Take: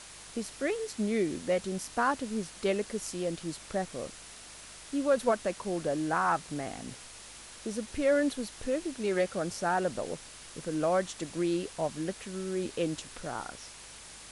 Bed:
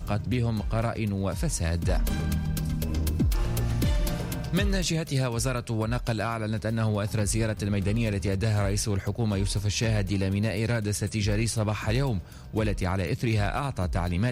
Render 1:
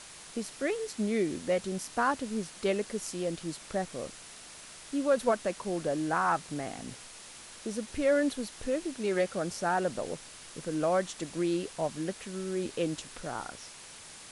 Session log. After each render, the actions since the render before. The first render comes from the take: de-hum 50 Hz, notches 2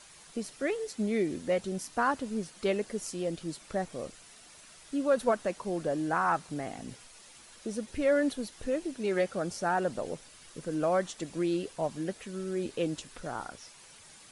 noise reduction 8 dB, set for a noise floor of -49 dBFS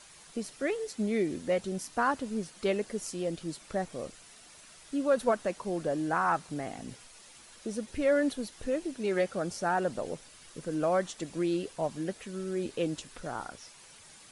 no audible change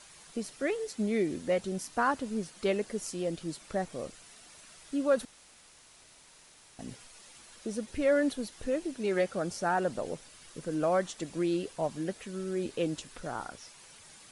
5.25–6.79 s: room tone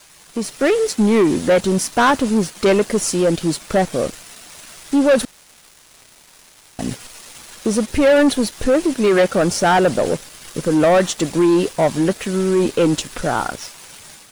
waveshaping leveller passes 3; level rider gain up to 7.5 dB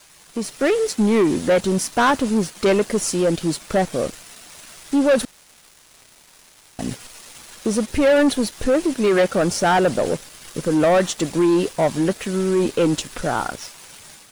trim -2.5 dB

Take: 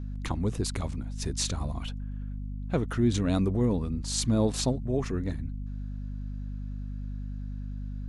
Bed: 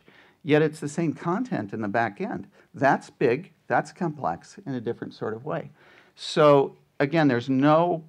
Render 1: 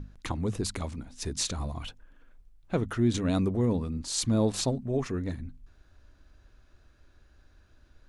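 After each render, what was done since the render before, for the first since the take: hum notches 50/100/150/200/250 Hz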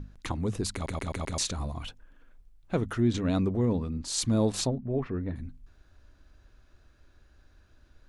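0.73 s: stutter in place 0.13 s, 5 plays; 3.01–4.05 s: distance through air 68 m; 4.67–5.36 s: distance through air 430 m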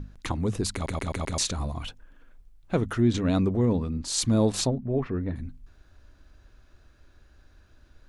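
trim +3 dB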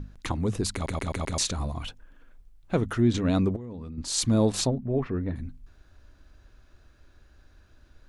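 3.56–3.98 s: level held to a coarse grid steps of 19 dB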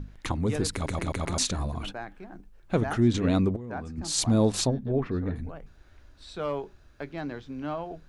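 add bed -14.5 dB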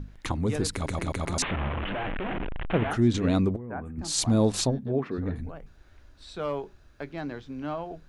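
1.42–2.91 s: one-bit delta coder 16 kbps, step -24.5 dBFS; 3.58–3.99 s: Butterworth band-stop 5.1 kHz, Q 0.66; 4.77–5.17 s: high-pass 62 Hz -> 260 Hz

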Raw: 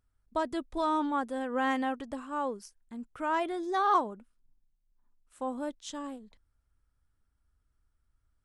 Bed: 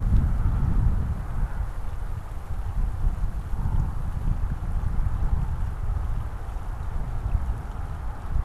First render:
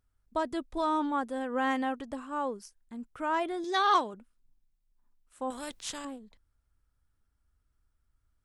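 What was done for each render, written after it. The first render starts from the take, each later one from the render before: 3.64–4.14 s: frequency weighting D; 5.50–6.05 s: spectrum-flattening compressor 2:1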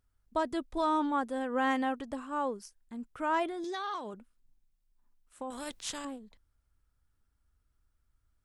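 3.48–5.66 s: compression 8:1, threshold -34 dBFS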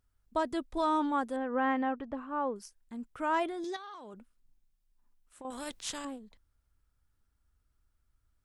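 1.36–2.56 s: low-pass 2.1 kHz; 3.76–5.45 s: compression 12:1, threshold -43 dBFS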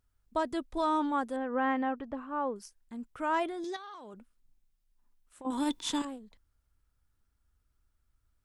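5.46–6.02 s: small resonant body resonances 290/930/3500 Hz, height 15 dB, ringing for 35 ms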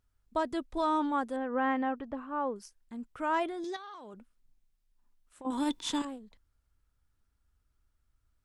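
treble shelf 10 kHz -5 dB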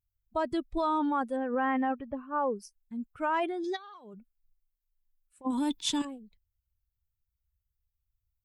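expander on every frequency bin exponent 1.5; in parallel at -2 dB: compressor with a negative ratio -34 dBFS, ratio -0.5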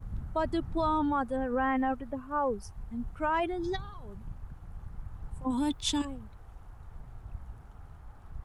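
add bed -17 dB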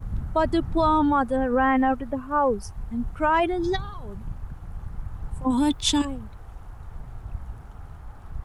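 trim +8 dB

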